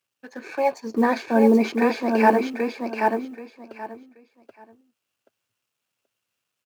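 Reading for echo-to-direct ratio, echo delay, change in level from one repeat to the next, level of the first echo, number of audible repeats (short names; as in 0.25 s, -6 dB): -4.0 dB, 0.78 s, -14.0 dB, -4.0 dB, 3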